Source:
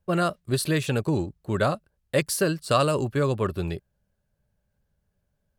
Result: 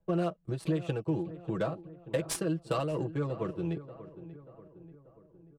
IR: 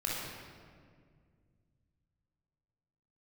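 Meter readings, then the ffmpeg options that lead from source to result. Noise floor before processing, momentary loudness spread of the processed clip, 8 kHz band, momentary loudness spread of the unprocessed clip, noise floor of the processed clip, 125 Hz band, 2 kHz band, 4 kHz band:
-76 dBFS, 17 LU, -9.5 dB, 8 LU, -63 dBFS, -7.0 dB, -13.5 dB, -13.0 dB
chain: -filter_complex "[0:a]acrossover=split=280|910[a][b][c];[a]acrusher=samples=11:mix=1:aa=0.000001:lfo=1:lforange=11:lforate=1.2[d];[c]aexciter=amount=1.7:drive=5.4:freq=2.5k[e];[d][b][e]amix=inputs=3:normalize=0,lowpass=f=12k:w=0.5412,lowpass=f=12k:w=1.3066,tiltshelf=f=1.1k:g=6,tremolo=f=4.3:d=0.49,acompressor=threshold=-28dB:ratio=6,bass=f=250:g=-6,treble=f=4k:g=8,adynamicsmooth=sensitivity=2.5:basefreq=1.7k,aecho=1:1:6.1:0.8,asplit=2[f][g];[g]adelay=586,lowpass=f=1.8k:p=1,volume=-14.5dB,asplit=2[h][i];[i]adelay=586,lowpass=f=1.8k:p=1,volume=0.55,asplit=2[j][k];[k]adelay=586,lowpass=f=1.8k:p=1,volume=0.55,asplit=2[l][m];[m]adelay=586,lowpass=f=1.8k:p=1,volume=0.55,asplit=2[n][o];[o]adelay=586,lowpass=f=1.8k:p=1,volume=0.55[p];[f][h][j][l][n][p]amix=inputs=6:normalize=0"

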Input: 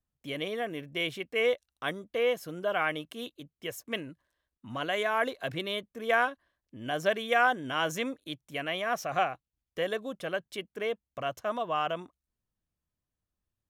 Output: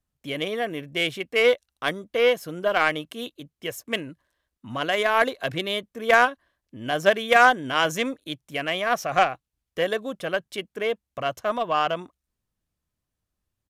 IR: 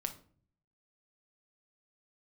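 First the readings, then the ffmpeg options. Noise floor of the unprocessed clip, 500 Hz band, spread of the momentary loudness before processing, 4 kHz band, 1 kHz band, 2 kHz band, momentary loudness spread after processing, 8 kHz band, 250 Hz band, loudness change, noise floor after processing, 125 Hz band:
under -85 dBFS, +7.0 dB, 13 LU, +7.5 dB, +8.0 dB, +8.0 dB, 16 LU, +7.0 dB, +6.0 dB, +8.0 dB, -84 dBFS, +5.5 dB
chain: -af "aeval=exprs='0.266*(cos(1*acos(clip(val(0)/0.266,-1,1)))-cos(1*PI/2))+0.0133*(cos(7*acos(clip(val(0)/0.266,-1,1)))-cos(7*PI/2))':c=same,aresample=32000,aresample=44100,volume=9dB"

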